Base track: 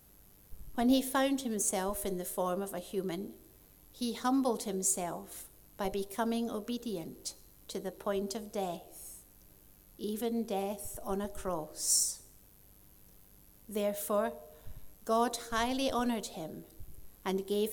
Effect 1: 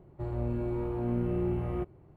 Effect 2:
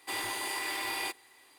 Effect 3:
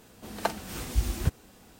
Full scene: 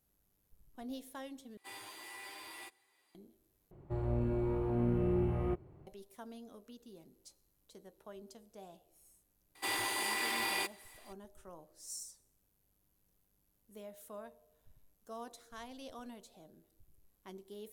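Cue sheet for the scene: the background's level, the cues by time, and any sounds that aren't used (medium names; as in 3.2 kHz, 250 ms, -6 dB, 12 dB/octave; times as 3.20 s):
base track -17 dB
1.57 s: replace with 2 -11.5 dB + endless flanger 8.7 ms +1.8 Hz
3.71 s: replace with 1 -1.5 dB
9.55 s: add 2 -0.5 dB
not used: 3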